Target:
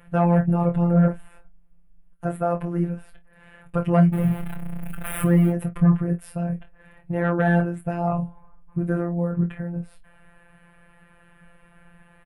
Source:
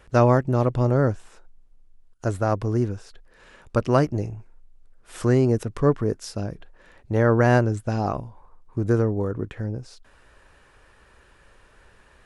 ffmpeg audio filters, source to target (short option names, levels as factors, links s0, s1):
-filter_complex "[0:a]asettb=1/sr,asplit=3[s0][s1][s2];[s0]atrim=end=4.134[s3];[s1]atrim=start=4.13:end=5.5,asetpts=PTS-STARTPTS,afade=t=in:d=0.004:c=qsin,afade=t=out:st=1.366:d=0.004:c=qsin,aeval=exprs='val(0)+0.5*0.0631*sgn(val(0))':c=same[s4];[s2]atrim=start=5.496[s5];[s3][s4]acrossfade=d=0.004:c1=hsin:c2=qsin[s6];[s6][s5]acrossfade=d=0.004:c1=qsin:c2=hsin,firequalizer=gain_entry='entry(110,0);entry(160,15);entry(250,-7);entry(680,3);entry(990,-2);entry(1700,1);entry(2600,0);entry(4200,-16);entry(6000,-23);entry(9700,2)':delay=0.05:min_phase=1,aecho=1:1:24|50:0.422|0.126,afftfilt=real='hypot(re,im)*cos(PI*b)':imag='0':win_size=1024:overlap=0.75,acontrast=87,volume=0.596"